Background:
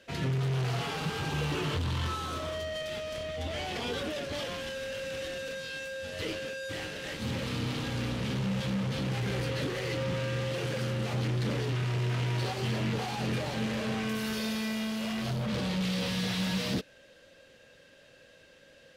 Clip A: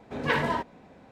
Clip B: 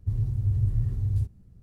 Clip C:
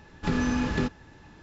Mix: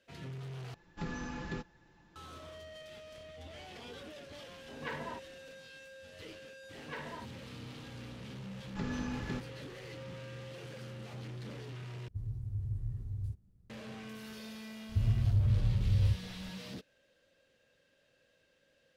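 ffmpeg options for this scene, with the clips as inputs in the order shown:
ffmpeg -i bed.wav -i cue0.wav -i cue1.wav -i cue2.wav -filter_complex "[3:a]asplit=2[link_01][link_02];[1:a]asplit=2[link_03][link_04];[2:a]asplit=2[link_05][link_06];[0:a]volume=-14dB[link_07];[link_01]aecho=1:1:5.8:0.49[link_08];[link_06]alimiter=limit=-20.5dB:level=0:latency=1:release=239[link_09];[link_07]asplit=3[link_10][link_11][link_12];[link_10]atrim=end=0.744[link_13];[link_08]atrim=end=1.42,asetpts=PTS-STARTPTS,volume=-13.5dB[link_14];[link_11]atrim=start=2.156:end=12.084[link_15];[link_05]atrim=end=1.62,asetpts=PTS-STARTPTS,volume=-12.5dB[link_16];[link_12]atrim=start=13.696[link_17];[link_03]atrim=end=1.11,asetpts=PTS-STARTPTS,volume=-15dB,afade=type=in:duration=0.004:curve=hsin,afade=type=out:start_time=1.106:duration=0.004:curve=hsin,adelay=201537S[link_18];[link_04]atrim=end=1.11,asetpts=PTS-STARTPTS,volume=-18dB,afade=type=in:duration=0.004:curve=hsin,afade=type=out:start_time=1.106:duration=0.004:curve=hsin,adelay=6630[link_19];[link_02]atrim=end=1.42,asetpts=PTS-STARTPTS,volume=-12dB,afade=type=in:duration=0.004:curve=hsin,afade=type=out:start_time=1.416:duration=0.004:curve=hsin,adelay=8520[link_20];[link_09]atrim=end=1.62,asetpts=PTS-STARTPTS,afade=type=in:duration=0.004:curve=hsin,afade=type=out:start_time=1.616:duration=0.004:curve=hsin,adelay=14890[link_21];[link_13][link_14]acrossfade=duration=0.004:curve1=hsin:curve2=hsin[link_22];[link_22][link_15]acrossfade=duration=0.004:curve1=hsin:curve2=hsin[link_23];[link_23][link_16]acrossfade=duration=0.004:curve1=hsin:curve2=hsin[link_24];[link_24][link_17]acrossfade=duration=0.004:curve1=hsin:curve2=hsin[link_25];[link_25][link_18][link_19][link_20][link_21]amix=inputs=5:normalize=0" out.wav

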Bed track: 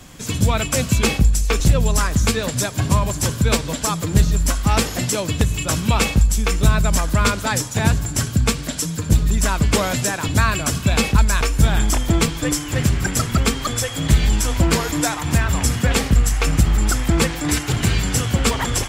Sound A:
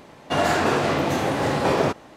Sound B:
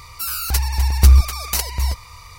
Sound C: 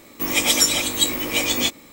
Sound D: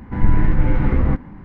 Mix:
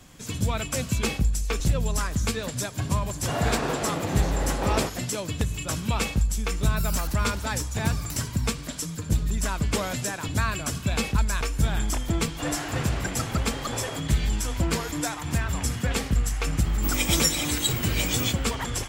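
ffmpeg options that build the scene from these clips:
ffmpeg -i bed.wav -i cue0.wav -i cue1.wav -i cue2.wav -filter_complex "[1:a]asplit=2[link_01][link_02];[0:a]volume=-8.5dB[link_03];[2:a]acompressor=threshold=-20dB:ratio=6:attack=3.2:release=140:knee=1:detection=peak[link_04];[link_02]tiltshelf=frequency=970:gain=-4[link_05];[3:a]bass=frequency=250:gain=6,treble=frequency=4000:gain=2[link_06];[link_01]atrim=end=2.16,asetpts=PTS-STARTPTS,volume=-8dB,afade=type=in:duration=0.004:curve=hsin,afade=type=out:start_time=2.156:duration=0.004:curve=hsin,adelay=2970[link_07];[link_04]atrim=end=2.38,asetpts=PTS-STARTPTS,volume=-12dB,afade=type=in:duration=0.004:curve=hsin,afade=type=out:start_time=2.376:duration=0.004:curve=hsin,adelay=6570[link_08];[link_05]atrim=end=2.16,asetpts=PTS-STARTPTS,volume=-13.5dB,afade=type=in:duration=0.004:curve=hsin,afade=type=out:start_time=2.156:duration=0.004:curve=hsin,adelay=12080[link_09];[link_06]atrim=end=1.92,asetpts=PTS-STARTPTS,volume=-8dB,afade=type=in:duration=0.004:curve=hsin,afade=type=out:start_time=1.916:duration=0.004:curve=hsin,adelay=16630[link_10];[link_03][link_07][link_08][link_09][link_10]amix=inputs=5:normalize=0" out.wav

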